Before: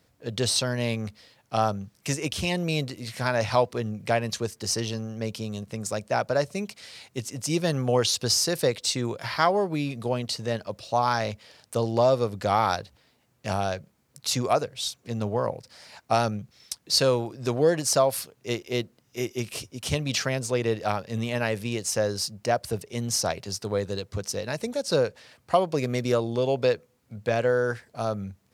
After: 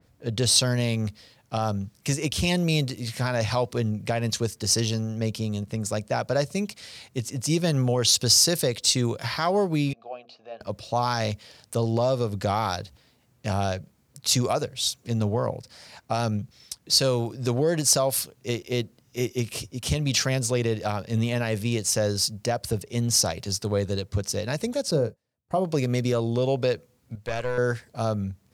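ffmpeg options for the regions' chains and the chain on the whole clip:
-filter_complex "[0:a]asettb=1/sr,asplit=3[a][b][c];[a]atrim=end=9.934[d];[b]atrim=start=9.93:end=10.61,asetpts=PTS-STARTPTS,afade=t=in:d=0.004:c=qsin,afade=t=out:st=0.676:d=0.004:c=qsin,asplit=3[e][f][g];[e]bandpass=f=730:t=q:w=8,volume=0dB[h];[f]bandpass=f=1.09k:t=q:w=8,volume=-6dB[i];[g]bandpass=f=2.44k:t=q:w=8,volume=-9dB[j];[h][i][j]amix=inputs=3:normalize=0,highpass=140,equalizer=f=150:t=q:w=4:g=-8,equalizer=f=1.1k:t=q:w=4:g=-4,equalizer=f=1.7k:t=q:w=4:g=8,equalizer=f=4.2k:t=q:w=4:g=3,lowpass=f=6.1k:w=0.5412,lowpass=f=6.1k:w=1.3066,bandreject=f=60:t=h:w=6,bandreject=f=120:t=h:w=6,bandreject=f=180:t=h:w=6,bandreject=f=240:t=h:w=6,bandreject=f=300:t=h:w=6,bandreject=f=360:t=h:w=6,bandreject=f=420:t=h:w=6,bandreject=f=480:t=h:w=6,bandreject=f=540:t=h:w=6[k];[c]atrim=start=10.606[l];[d][k]acrossfade=d=0.004:c1=hsin:c2=qsin[m];[m][l]acrossfade=d=0.004:c1=qsin:c2=hsin,asettb=1/sr,asplit=3[n][o][p];[n]atrim=end=24.914[q];[o]atrim=start=24.91:end=25.65,asetpts=PTS-STARTPTS,afade=t=in:d=0.004:c=qsin,afade=t=out:st=0.736:d=0.004:c=qsin,agate=range=-25dB:threshold=-44dB:ratio=16:release=100:detection=peak,equalizer=f=3.1k:w=0.37:g=-15,asplit=2[r][s];[s]adelay=26,volume=-12dB[t];[r][t]amix=inputs=2:normalize=0,atrim=end_sample=32634[u];[p]atrim=start=25.646[v];[q][u]acrossfade=d=0.004:c1=hsin:c2=qsin[w];[w][v]acrossfade=d=0.004:c1=qsin:c2=hsin,asettb=1/sr,asplit=3[x][y][z];[x]atrim=end=27.154[aa];[y]atrim=start=27.15:end=27.58,asetpts=PTS-STARTPTS,afade=t=in:d=0.004:c=qsin,afade=t=out:st=0.426:d=0.004:c=qsin,acompressor=mode=upward:threshold=-41dB:ratio=2.5:attack=3.2:release=140:knee=2.83:detection=peak,equalizer=f=190:w=0.53:g=-11,aeval=exprs='(tanh(11.2*val(0)+0.55)-tanh(0.55))/11.2':c=same[ab];[z]atrim=start=27.576[ac];[aa][ab]acrossfade=d=0.004:c1=hsin:c2=qsin[ad];[ad][ac]acrossfade=d=0.004:c1=qsin:c2=hsin,lowshelf=f=240:g=7.5,alimiter=limit=-13.5dB:level=0:latency=1:release=99,adynamicequalizer=threshold=0.0158:dfrequency=3000:dqfactor=0.7:tfrequency=3000:tqfactor=0.7:attack=5:release=100:ratio=0.375:range=3.5:mode=boostabove:tftype=highshelf"

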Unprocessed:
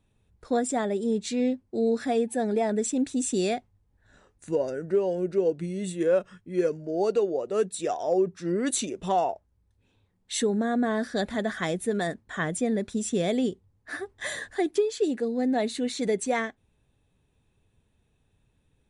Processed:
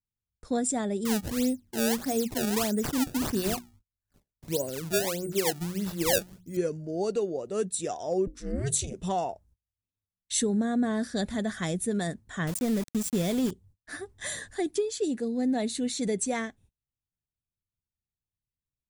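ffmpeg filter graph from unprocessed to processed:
-filter_complex "[0:a]asettb=1/sr,asplit=3[a][b][c];[a]atrim=end=1.054[d];[b]atrim=start=1.05:end=6.57,asetpts=PTS-STARTPTS,afade=t=in:d=0.004:c=qsin,afade=t=out:st=5.516:d=0.004:c=qsin,bandreject=f=60:t=h:w=6,bandreject=f=120:t=h:w=6,bandreject=f=180:t=h:w=6,bandreject=f=240:t=h:w=6,bandreject=f=300:t=h:w=6,bandreject=f=360:t=h:w=6,acrusher=samples=24:mix=1:aa=0.000001:lfo=1:lforange=38.4:lforate=1.6[e];[c]atrim=start=6.566[f];[d][e]acrossfade=d=0.004:c1=hsin:c2=qsin[g];[g][f]acrossfade=d=0.004:c1=qsin:c2=hsin,asettb=1/sr,asplit=3[h][i][j];[h]atrim=end=8.274[k];[i]atrim=start=8.27:end=8.94,asetpts=PTS-STARTPTS,afade=t=in:d=0.004:c=qsin,afade=t=out:st=0.666:d=0.004:c=qsin,aeval=exprs='val(0)*sin(2*PI*140*n/s)':c=same,bandreject=f=50:t=h:w=6,bandreject=f=100:t=h:w=6,bandreject=f=150:t=h:w=6,bandreject=f=200:t=h:w=6,bandreject=f=250:t=h:w=6,bandreject=f=300:t=h:w=6,bandreject=f=350:t=h:w=6,bandreject=f=400:t=h:w=6,bandreject=f=450:t=h:w=6,acompressor=mode=upward:threshold=-42dB:ratio=2.5:attack=3.2:release=140:knee=2.83:detection=peak[l];[j]atrim=start=8.936[m];[k][l]acrossfade=d=0.004:c1=hsin:c2=qsin[n];[n][m]acrossfade=d=0.004:c1=qsin:c2=hsin,asettb=1/sr,asplit=3[o][p][q];[o]atrim=end=12.474[r];[p]atrim=start=12.47:end=13.51,asetpts=PTS-STARTPTS,afade=t=in:d=0.004:c=qsin,afade=t=out:st=1.036:d=0.004:c=qsin,highshelf=f=6.5k:g=-4,aeval=exprs='val(0)*gte(abs(val(0)),0.0251)':c=same[s];[q]atrim=start=13.506[t];[r][s]acrossfade=d=0.004:c1=hsin:c2=qsin[u];[u][t]acrossfade=d=0.004:c1=qsin:c2=hsin,highshelf=f=6.3k:g=3.5,agate=range=-30dB:threshold=-55dB:ratio=16:detection=peak,bass=f=250:g=10,treble=f=4k:g=8,volume=-5.5dB"

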